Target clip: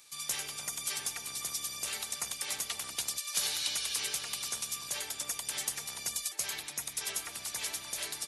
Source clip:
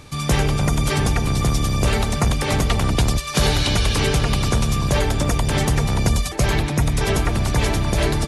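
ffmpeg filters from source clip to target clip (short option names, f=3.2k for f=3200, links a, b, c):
-af "aderivative,volume=-4.5dB"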